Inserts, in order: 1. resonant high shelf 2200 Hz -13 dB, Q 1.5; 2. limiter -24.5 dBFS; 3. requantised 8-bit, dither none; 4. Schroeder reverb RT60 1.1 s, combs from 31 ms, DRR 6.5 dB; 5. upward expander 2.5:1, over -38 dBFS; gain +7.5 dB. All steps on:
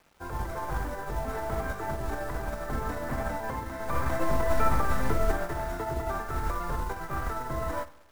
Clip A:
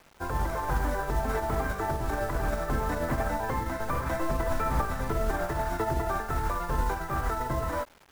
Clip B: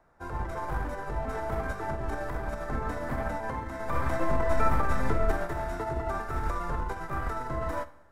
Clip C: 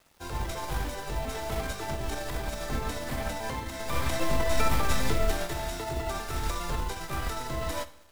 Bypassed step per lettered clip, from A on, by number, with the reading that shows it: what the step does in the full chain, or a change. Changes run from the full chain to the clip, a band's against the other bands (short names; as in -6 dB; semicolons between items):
4, momentary loudness spread change -5 LU; 3, distortion -20 dB; 1, 4 kHz band +11.0 dB